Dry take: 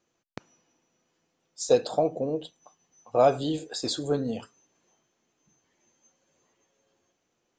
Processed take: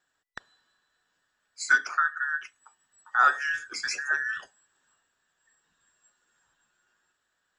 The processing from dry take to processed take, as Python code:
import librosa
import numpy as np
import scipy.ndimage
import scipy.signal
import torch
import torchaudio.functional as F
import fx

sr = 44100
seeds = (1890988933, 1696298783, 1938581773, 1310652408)

y = fx.band_invert(x, sr, width_hz=2000)
y = fx.bandpass_edges(y, sr, low_hz=190.0, high_hz=6500.0, at=(1.76, 2.22))
y = y * librosa.db_to_amplitude(-1.0)